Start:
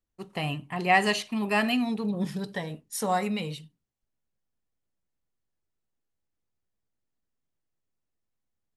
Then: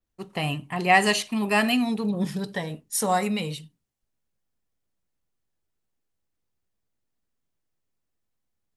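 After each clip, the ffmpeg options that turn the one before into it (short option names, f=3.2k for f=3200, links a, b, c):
-af "adynamicequalizer=threshold=0.00398:dfrequency=9300:dqfactor=0.77:tfrequency=9300:tqfactor=0.77:attack=5:release=100:ratio=0.375:range=3:mode=boostabove:tftype=bell,volume=3dB"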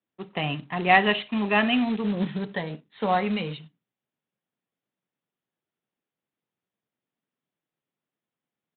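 -af "highpass=f=140:w=0.5412,highpass=f=140:w=1.3066,aresample=8000,acrusher=bits=4:mode=log:mix=0:aa=0.000001,aresample=44100"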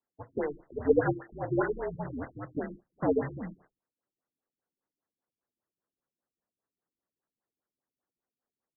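-af "highpass=f=520:t=q:w=0.5412,highpass=f=520:t=q:w=1.307,lowpass=f=3.2k:t=q:w=0.5176,lowpass=f=3.2k:t=q:w=0.7071,lowpass=f=3.2k:t=q:w=1.932,afreqshift=-280,acrusher=bits=2:mode=log:mix=0:aa=0.000001,afftfilt=real='re*lt(b*sr/1024,340*pow(2100/340,0.5+0.5*sin(2*PI*5*pts/sr)))':imag='im*lt(b*sr/1024,340*pow(2100/340,0.5+0.5*sin(2*PI*5*pts/sr)))':win_size=1024:overlap=0.75,volume=2dB"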